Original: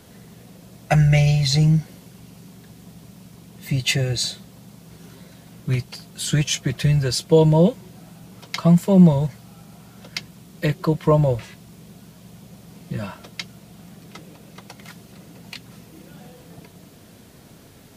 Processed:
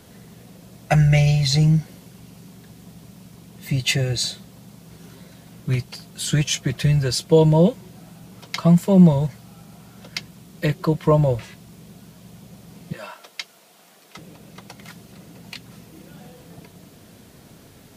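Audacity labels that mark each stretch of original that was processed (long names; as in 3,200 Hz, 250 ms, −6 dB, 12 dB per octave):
12.930000	14.170000	high-pass filter 550 Hz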